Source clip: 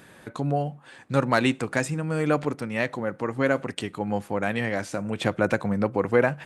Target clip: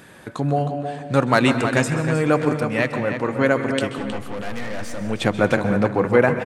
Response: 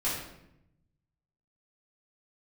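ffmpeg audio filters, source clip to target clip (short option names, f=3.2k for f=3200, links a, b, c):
-filter_complex "[0:a]asettb=1/sr,asplit=3[a][b][c];[a]atrim=end=3.984[d];[b]atrim=start=3.98:end=5.01,asetpts=PTS-STARTPTS,afade=t=in:d=0.004:c=qsin,afade=t=out:st=1.026:d=0.004:c=qsin,aeval=exprs='(tanh(44.7*val(0)+0.5)-tanh(0.5))/44.7':c=same[e];[c]atrim=start=5.006[f];[d][e]acrossfade=d=0.004:c1=hsin:c2=qsin[g];[g][f]acrossfade=d=0.004:c1=qsin:c2=hsin,asplit=2[h][i];[i]adelay=315,lowpass=f=4.9k:p=1,volume=-8dB,asplit=2[j][k];[k]adelay=315,lowpass=f=4.9k:p=1,volume=0.32,asplit=2[l][m];[m]adelay=315,lowpass=f=4.9k:p=1,volume=0.32,asplit=2[n][o];[o]adelay=315,lowpass=f=4.9k:p=1,volume=0.32[p];[h][j][l][n][p]amix=inputs=5:normalize=0,asplit=2[q][r];[1:a]atrim=start_sample=2205,adelay=128[s];[r][s]afir=irnorm=-1:irlink=0,volume=-17.5dB[t];[q][t]amix=inputs=2:normalize=0,volume=4.5dB"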